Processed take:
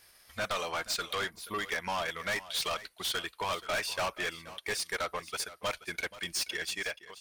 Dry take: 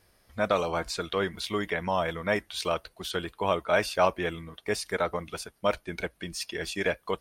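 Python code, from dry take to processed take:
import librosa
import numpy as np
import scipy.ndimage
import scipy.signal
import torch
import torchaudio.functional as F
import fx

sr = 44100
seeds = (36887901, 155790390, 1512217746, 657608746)

p1 = fx.fade_out_tail(x, sr, length_s=0.77)
p2 = fx.spec_box(p1, sr, start_s=1.3, length_s=0.29, low_hz=1200.0, high_hz=9400.0, gain_db=-18)
p3 = fx.transient(p2, sr, attack_db=2, sustain_db=-8)
p4 = fx.tilt_shelf(p3, sr, db=-9.0, hz=800.0)
p5 = 10.0 ** (-28.5 / 20.0) * np.tanh(p4 / 10.0 ** (-28.5 / 20.0))
y = p5 + fx.echo_single(p5, sr, ms=479, db=-16.5, dry=0)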